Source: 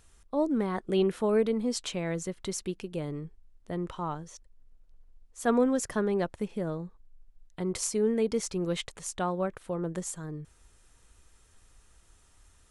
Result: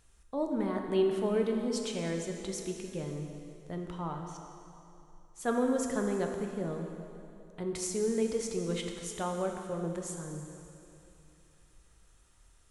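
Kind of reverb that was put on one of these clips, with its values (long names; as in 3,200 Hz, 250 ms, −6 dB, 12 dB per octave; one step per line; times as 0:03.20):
dense smooth reverb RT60 2.8 s, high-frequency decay 0.9×, DRR 2.5 dB
level −5 dB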